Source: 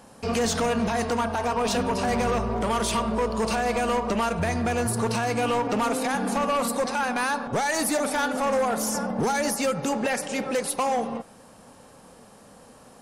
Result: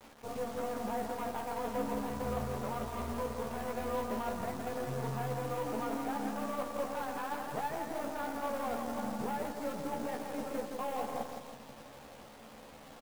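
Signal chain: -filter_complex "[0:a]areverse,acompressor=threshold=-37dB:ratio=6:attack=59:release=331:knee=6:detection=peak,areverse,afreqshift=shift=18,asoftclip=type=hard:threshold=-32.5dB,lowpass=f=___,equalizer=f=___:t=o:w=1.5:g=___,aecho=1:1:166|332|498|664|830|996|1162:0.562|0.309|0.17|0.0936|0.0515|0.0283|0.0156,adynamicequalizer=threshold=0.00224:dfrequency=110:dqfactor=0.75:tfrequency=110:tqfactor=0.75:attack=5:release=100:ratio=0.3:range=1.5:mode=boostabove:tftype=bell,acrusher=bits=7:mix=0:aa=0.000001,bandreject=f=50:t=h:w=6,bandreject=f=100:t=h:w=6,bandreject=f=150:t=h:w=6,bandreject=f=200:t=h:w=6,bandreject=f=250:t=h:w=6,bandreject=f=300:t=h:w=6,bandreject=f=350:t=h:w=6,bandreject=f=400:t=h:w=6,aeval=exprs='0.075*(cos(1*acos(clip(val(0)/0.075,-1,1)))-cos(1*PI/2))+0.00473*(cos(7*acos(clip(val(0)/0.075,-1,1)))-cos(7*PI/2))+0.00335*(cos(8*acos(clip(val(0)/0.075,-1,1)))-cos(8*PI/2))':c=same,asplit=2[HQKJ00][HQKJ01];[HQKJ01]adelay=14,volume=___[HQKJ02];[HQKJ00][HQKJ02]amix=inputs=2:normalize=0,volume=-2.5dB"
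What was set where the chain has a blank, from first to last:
1.2k, 840, 3.5, -5dB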